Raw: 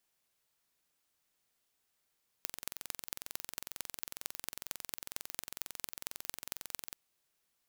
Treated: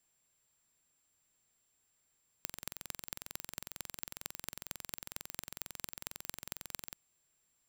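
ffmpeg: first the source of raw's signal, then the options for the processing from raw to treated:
-f lavfi -i "aevalsrc='0.376*eq(mod(n,1995),0)*(0.5+0.5*eq(mod(n,9975),0))':d=4.51:s=44100"
-af "bass=f=250:g=6,treble=f=4000:g=-2,aeval=exprs='val(0)+0.000158*sin(2*PI*7400*n/s)':c=same"

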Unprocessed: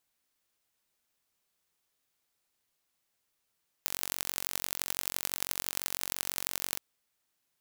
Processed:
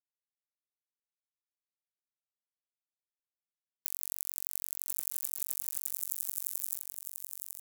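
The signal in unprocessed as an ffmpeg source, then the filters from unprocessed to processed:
-f lavfi -i "aevalsrc='0.75*eq(mod(n,959),0)*(0.5+0.5*eq(mod(n,3836),0))':d=2.92:s=44100"
-filter_complex "[0:a]afftfilt=real='re*(1-between(b*sr/4096,180,6600))':imag='im*(1-between(b*sr/4096,180,6600))':win_size=4096:overlap=0.75,aeval=exprs='sgn(val(0))*max(abs(val(0))-0.015,0)':c=same,asplit=2[s0][s1];[s1]aecho=0:1:1038|2076|3114:0.531|0.0849|0.0136[s2];[s0][s2]amix=inputs=2:normalize=0"

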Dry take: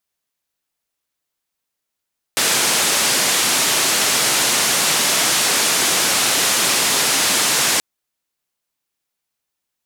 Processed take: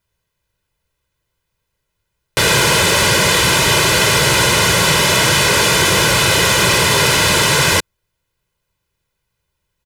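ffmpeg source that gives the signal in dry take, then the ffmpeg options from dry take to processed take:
-f lavfi -i "anoisesrc=c=white:d=5.43:r=44100:seed=1,highpass=f=160,lowpass=f=9400,volume=-8.5dB"
-filter_complex "[0:a]bass=f=250:g=15,treble=f=4000:g=-8,aecho=1:1:2:0.74,asplit=2[s0][s1];[s1]alimiter=limit=0.211:level=0:latency=1:release=20,volume=1.19[s2];[s0][s2]amix=inputs=2:normalize=0"

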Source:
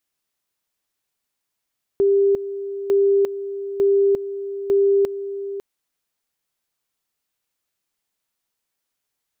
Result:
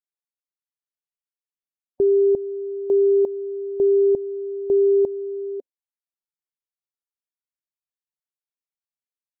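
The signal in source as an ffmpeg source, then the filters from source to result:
-f lavfi -i "aevalsrc='pow(10,(-13-12.5*gte(mod(t,0.9),0.35))/20)*sin(2*PI*397*t)':d=3.6:s=44100"
-af "afftdn=nr=24:nf=-33"

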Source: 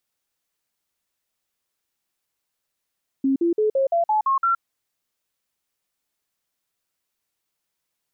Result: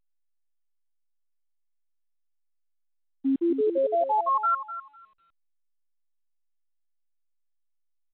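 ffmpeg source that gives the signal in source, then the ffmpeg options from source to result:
-f lavfi -i "aevalsrc='0.15*clip(min(mod(t,0.17),0.12-mod(t,0.17))/0.005,0,1)*sin(2*PI*270*pow(2,floor(t/0.17)/3)*mod(t,0.17))':d=1.36:s=44100"
-filter_complex "[0:a]agate=range=0.0224:threshold=0.141:ratio=3:detection=peak,asplit=2[s0][s1];[s1]adelay=251,lowpass=f=1100:p=1,volume=0.376,asplit=2[s2][s3];[s3]adelay=251,lowpass=f=1100:p=1,volume=0.26,asplit=2[s4][s5];[s5]adelay=251,lowpass=f=1100:p=1,volume=0.26[s6];[s2][s4][s6]amix=inputs=3:normalize=0[s7];[s0][s7]amix=inputs=2:normalize=0" -ar 8000 -c:a pcm_alaw

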